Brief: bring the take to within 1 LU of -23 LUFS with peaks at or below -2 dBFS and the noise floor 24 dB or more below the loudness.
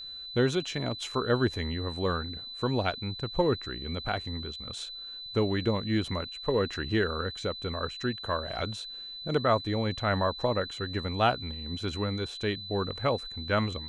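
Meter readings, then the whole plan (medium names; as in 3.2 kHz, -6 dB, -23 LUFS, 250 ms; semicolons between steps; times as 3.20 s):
steady tone 4 kHz; tone level -39 dBFS; loudness -30.5 LUFS; peak level -10.0 dBFS; loudness target -23.0 LUFS
-> band-stop 4 kHz, Q 30; trim +7.5 dB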